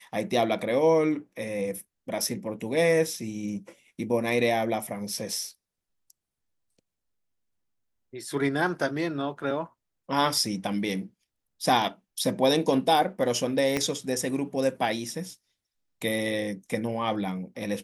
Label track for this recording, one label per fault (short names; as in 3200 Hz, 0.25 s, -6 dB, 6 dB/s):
13.770000	13.770000	pop -12 dBFS